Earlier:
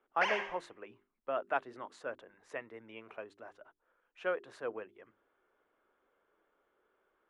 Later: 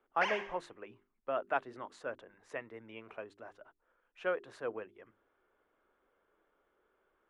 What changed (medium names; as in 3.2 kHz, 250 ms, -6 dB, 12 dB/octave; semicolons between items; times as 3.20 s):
speech: add bass shelf 120 Hz +7.5 dB; background: send -7.5 dB